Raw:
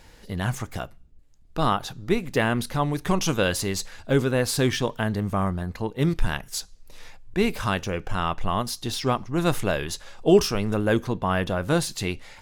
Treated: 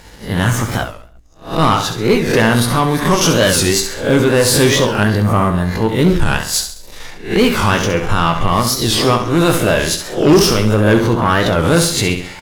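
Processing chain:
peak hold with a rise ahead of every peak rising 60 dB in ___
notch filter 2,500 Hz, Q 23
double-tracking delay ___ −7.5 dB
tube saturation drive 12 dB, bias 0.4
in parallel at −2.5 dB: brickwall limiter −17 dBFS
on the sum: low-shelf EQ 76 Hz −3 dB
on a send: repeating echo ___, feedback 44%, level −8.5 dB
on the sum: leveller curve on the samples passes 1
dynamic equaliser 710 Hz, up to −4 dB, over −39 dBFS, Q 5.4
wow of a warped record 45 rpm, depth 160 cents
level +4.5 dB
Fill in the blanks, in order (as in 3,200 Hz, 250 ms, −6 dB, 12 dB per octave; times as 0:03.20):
0.38 s, 18 ms, 67 ms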